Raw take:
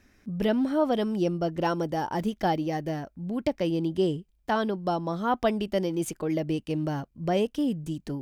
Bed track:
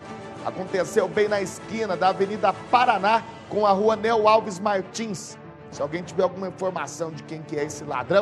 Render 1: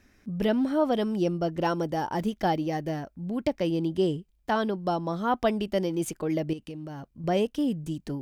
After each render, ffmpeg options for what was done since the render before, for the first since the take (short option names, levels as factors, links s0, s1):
-filter_complex "[0:a]asettb=1/sr,asplit=3[s0][s1][s2];[s0]atrim=end=6.534[s3];[s1]atrim=start=6.53:end=7.24,asetpts=PTS-STARTPTS,afade=t=in:d=0.004:c=qsin,afade=t=out:st=0.706:d=0.004:c=qsin,acompressor=threshold=0.0178:ratio=6:attack=3.2:release=140:knee=1:detection=peak[s4];[s2]atrim=start=7.236[s5];[s3][s4]acrossfade=d=0.004:c1=hsin:c2=qsin[s6];[s6][s5]acrossfade=d=0.004:c1=qsin:c2=hsin"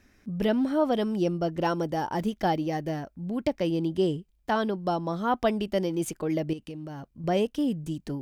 -af anull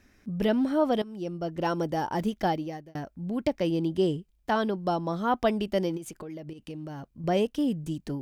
-filter_complex "[0:a]asplit=3[s0][s1][s2];[s0]afade=t=out:st=5.96:d=0.02[s3];[s1]acompressor=threshold=0.0158:ratio=8:attack=3.2:release=140:knee=1:detection=peak,afade=t=in:st=5.96:d=0.02,afade=t=out:st=6.68:d=0.02[s4];[s2]afade=t=in:st=6.68:d=0.02[s5];[s3][s4][s5]amix=inputs=3:normalize=0,asplit=3[s6][s7][s8];[s6]atrim=end=1.02,asetpts=PTS-STARTPTS,afade=t=out:st=1.016:d=0.004:c=hsin:silence=0.149624[s9];[s7]atrim=start=1.02:end=2.95,asetpts=PTS-STARTPTS,afade=t=in:d=0.8:silence=0.149624,afade=t=out:st=1.4:d=0.53[s10];[s8]atrim=start=2.95,asetpts=PTS-STARTPTS,afade=t=in:d=0.004:c=hsin[s11];[s9][s10][s11]concat=n=3:v=0:a=1"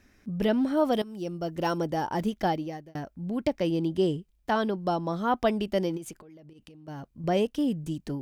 -filter_complex "[0:a]asettb=1/sr,asplit=3[s0][s1][s2];[s0]atrim=end=0.774[s3];[s1]atrim=start=0.77:end=1.78,asetpts=PTS-STARTPTS,afade=t=in:d=0.004:c=qsin,afade=t=out:st=1.006:d=0.004:c=qsin,highshelf=f=6400:g=9.5[s4];[s2]atrim=start=1.776[s5];[s3][s4]acrossfade=d=0.004:c1=hsin:c2=qsin[s6];[s6][s5]acrossfade=d=0.004:c1=qsin:c2=hsin,asettb=1/sr,asplit=3[s7][s8][s9];[s7]atrim=end=6.164[s10];[s8]atrim=start=6.16:end=6.88,asetpts=PTS-STARTPTS,afade=t=in:d=0.004:c=qsin,afade=t=out:st=0.716:d=0.004:c=qsin,acompressor=threshold=0.00447:ratio=8:attack=3.2:release=140:knee=1:detection=peak[s11];[s9]atrim=start=6.876[s12];[s10][s11]acrossfade=d=0.004:c1=hsin:c2=qsin[s13];[s13][s12]acrossfade=d=0.004:c1=qsin:c2=hsin"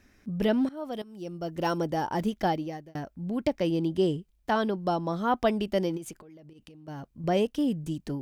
-filter_complex "[0:a]asplit=2[s0][s1];[s0]atrim=end=0.69,asetpts=PTS-STARTPTS,afade=t=out:st=0.686:d=0.004:c=hsin:silence=0.11885[s2];[s1]atrim=start=0.69,asetpts=PTS-STARTPTS,afade=t=in:d=0.99:silence=0.11885[s3];[s2][s3]concat=n=2:v=0:a=1"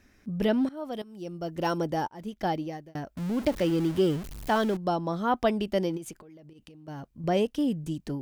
-filter_complex "[0:a]asettb=1/sr,asplit=3[s0][s1][s2];[s0]atrim=end=3.174[s3];[s1]atrim=start=3.17:end=4.77,asetpts=PTS-STARTPTS,afade=t=in:d=0.004:c=qsin,afade=t=out:st=1.596:d=0.004:c=qsin,aeval=exprs='val(0)+0.5*0.02*sgn(val(0))':c=same[s4];[s2]atrim=start=4.766[s5];[s3][s4]acrossfade=d=0.004:c1=hsin:c2=qsin[s6];[s6][s5]acrossfade=d=0.004:c1=qsin:c2=hsin,asplit=2[s7][s8];[s7]atrim=end=2.08,asetpts=PTS-STARTPTS,afade=t=out:st=2.076:d=0.004:c=hsin[s9];[s8]atrim=start=2.08,asetpts=PTS-STARTPTS,afade=t=in:d=0.5[s10];[s9][s10]concat=n=2:v=0:a=1"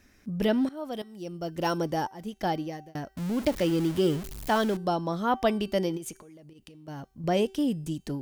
-af "highshelf=f=4000:g=5,bandreject=f=385.2:t=h:w=4,bandreject=f=770.4:t=h:w=4,bandreject=f=1155.6:t=h:w=4,bandreject=f=1540.8:t=h:w=4,bandreject=f=1926:t=h:w=4,bandreject=f=2311.2:t=h:w=4,bandreject=f=2696.4:t=h:w=4,bandreject=f=3081.6:t=h:w=4,bandreject=f=3466.8:t=h:w=4,bandreject=f=3852:t=h:w=4,bandreject=f=4237.2:t=h:w=4,bandreject=f=4622.4:t=h:w=4,bandreject=f=5007.6:t=h:w=4,bandreject=f=5392.8:t=h:w=4,bandreject=f=5778:t=h:w=4,bandreject=f=6163.2:t=h:w=4,bandreject=f=6548.4:t=h:w=4,bandreject=f=6933.6:t=h:w=4,bandreject=f=7318.8:t=h:w=4,bandreject=f=7704:t=h:w=4,bandreject=f=8089.2:t=h:w=4,bandreject=f=8474.4:t=h:w=4,bandreject=f=8859.6:t=h:w=4,bandreject=f=9244.8:t=h:w=4,bandreject=f=9630:t=h:w=4,bandreject=f=10015.2:t=h:w=4,bandreject=f=10400.4:t=h:w=4,bandreject=f=10785.6:t=h:w=4,bandreject=f=11170.8:t=h:w=4,bandreject=f=11556:t=h:w=4,bandreject=f=11941.2:t=h:w=4,bandreject=f=12326.4:t=h:w=4,bandreject=f=12711.6:t=h:w=4,bandreject=f=13096.8:t=h:w=4,bandreject=f=13482:t=h:w=4,bandreject=f=13867.2:t=h:w=4,bandreject=f=14252.4:t=h:w=4,bandreject=f=14637.6:t=h:w=4,bandreject=f=15022.8:t=h:w=4"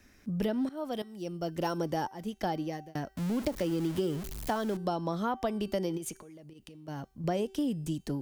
-filter_complex "[0:a]acrossover=split=230|1800|4000[s0][s1][s2][s3];[s2]alimiter=level_in=4.73:limit=0.0631:level=0:latency=1:release=243,volume=0.211[s4];[s0][s1][s4][s3]amix=inputs=4:normalize=0,acompressor=threshold=0.0447:ratio=6"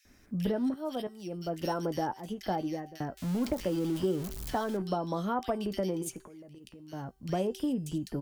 -filter_complex "[0:a]asplit=2[s0][s1];[s1]adelay=16,volume=0.251[s2];[s0][s2]amix=inputs=2:normalize=0,acrossover=split=2100[s3][s4];[s3]adelay=50[s5];[s5][s4]amix=inputs=2:normalize=0"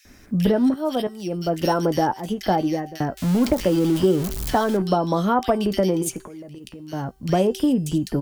-af "volume=3.76"